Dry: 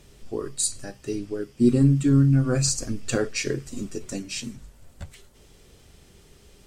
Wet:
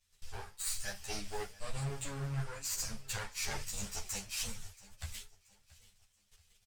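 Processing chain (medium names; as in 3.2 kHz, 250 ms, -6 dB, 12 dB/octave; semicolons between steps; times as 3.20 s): comb filter that takes the minimum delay 9.9 ms; gate -50 dBFS, range -24 dB; amplifier tone stack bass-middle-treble 10-0-10; reverse; compression 12:1, threshold -43 dBFS, peak gain reduction 20 dB; reverse; flange 1.1 Hz, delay 7.8 ms, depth 9.9 ms, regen -71%; on a send: feedback delay 679 ms, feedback 40%, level -20 dB; on the sum: three-phase chorus; trim +15 dB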